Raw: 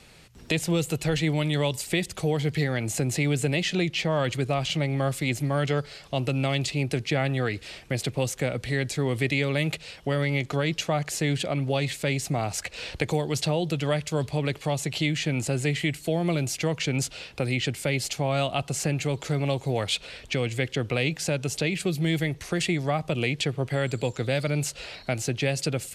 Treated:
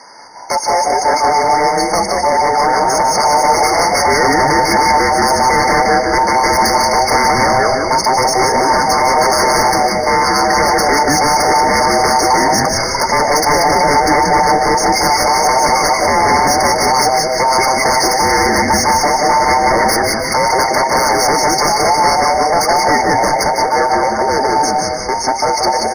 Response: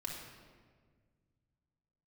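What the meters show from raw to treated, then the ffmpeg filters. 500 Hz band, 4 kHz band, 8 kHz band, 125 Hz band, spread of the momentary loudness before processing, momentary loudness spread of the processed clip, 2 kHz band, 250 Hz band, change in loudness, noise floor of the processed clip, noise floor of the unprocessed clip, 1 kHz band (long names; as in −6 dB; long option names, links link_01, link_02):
+14.0 dB, +13.5 dB, +17.0 dB, −1.5 dB, 4 LU, 3 LU, +15.0 dB, +8.0 dB, +15.0 dB, −18 dBFS, −49 dBFS, +27.0 dB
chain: -filter_complex "[0:a]afftfilt=real='real(if(between(b,1,1008),(2*floor((b-1)/48)+1)*48-b,b),0)':imag='imag(if(between(b,1,1008),(2*floor((b-1)/48)+1)*48-b,b),0)*if(between(b,1,1008),-1,1)':win_size=2048:overlap=0.75,acrusher=bits=4:mode=log:mix=0:aa=0.000001,dynaudnorm=framelen=220:gausssize=31:maxgain=5dB,highpass=180,lowpass=6400,tiltshelf=frequency=1100:gain=-4,asplit=2[link_01][link_02];[link_02]asplit=6[link_03][link_04][link_05][link_06][link_07][link_08];[link_03]adelay=181,afreqshift=-130,volume=-4.5dB[link_09];[link_04]adelay=362,afreqshift=-260,volume=-11.4dB[link_10];[link_05]adelay=543,afreqshift=-390,volume=-18.4dB[link_11];[link_06]adelay=724,afreqshift=-520,volume=-25.3dB[link_12];[link_07]adelay=905,afreqshift=-650,volume=-32.2dB[link_13];[link_08]adelay=1086,afreqshift=-780,volume=-39.2dB[link_14];[link_09][link_10][link_11][link_12][link_13][link_14]amix=inputs=6:normalize=0[link_15];[link_01][link_15]amix=inputs=2:normalize=0,aeval=exprs='0.631*sin(PI/2*5.62*val(0)/0.631)':channel_layout=same,asplit=2[link_16][link_17];[link_17]aecho=0:1:152|304|456|608|760:0.398|0.167|0.0702|0.0295|0.0124[link_18];[link_16][link_18]amix=inputs=2:normalize=0,afftfilt=real='re*eq(mod(floor(b*sr/1024/2200),2),0)':imag='im*eq(mod(floor(b*sr/1024/2200),2),0)':win_size=1024:overlap=0.75,volume=-4dB"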